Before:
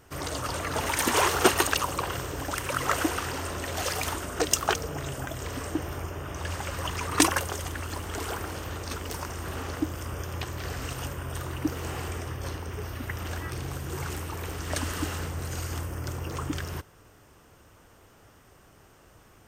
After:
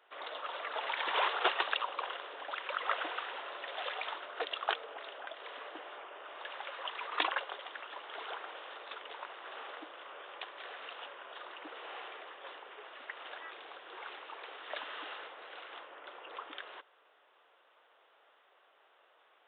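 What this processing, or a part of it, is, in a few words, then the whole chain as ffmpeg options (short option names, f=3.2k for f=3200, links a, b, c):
musical greeting card: -filter_complex "[0:a]aresample=8000,aresample=44100,highpass=f=520:w=0.5412,highpass=f=520:w=1.3066,equalizer=f=3.7k:t=o:w=0.4:g=5.5,asettb=1/sr,asplit=3[a][b][c];[a]atrim=end=4.864[d];[b]atrim=start=4.86:end=5.79,asetpts=PTS-STARTPTS,afade=t=in:d=0.004:c=qsin,afade=t=out:st=0.926:d=0.004:c=qsin,highpass=f=220:w=0.5412,highpass=f=220:w=1.3066[e];[c]atrim=start=5.786[f];[d][e]acrossfade=d=0.004:c1=hsin:c2=qsin[g];[g][f]acrossfade=d=0.004:c1=qsin:c2=hsin,volume=-6.5dB"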